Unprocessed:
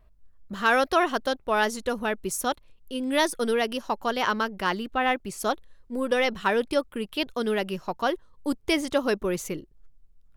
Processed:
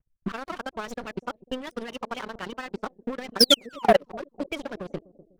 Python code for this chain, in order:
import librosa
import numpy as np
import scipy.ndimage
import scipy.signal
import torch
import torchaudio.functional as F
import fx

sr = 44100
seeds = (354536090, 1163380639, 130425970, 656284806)

y = fx.spec_quant(x, sr, step_db=30)
y = fx.stretch_vocoder(y, sr, factor=0.52)
y = fx.high_shelf(y, sr, hz=8700.0, db=-12.0)
y = fx.spec_paint(y, sr, seeds[0], shape='fall', start_s=3.39, length_s=0.64, low_hz=410.0, high_hz=5800.0, level_db=-21.0)
y = fx.env_lowpass(y, sr, base_hz=1500.0, full_db=-20.0)
y = fx.level_steps(y, sr, step_db=20)
y = fx.transient(y, sr, attack_db=9, sustain_db=-5)
y = fx.leveller(y, sr, passes=3)
y = fx.echo_bbd(y, sr, ms=248, stages=1024, feedback_pct=50, wet_db=-19.0)
y = y * librosa.db_to_amplitude(-6.0)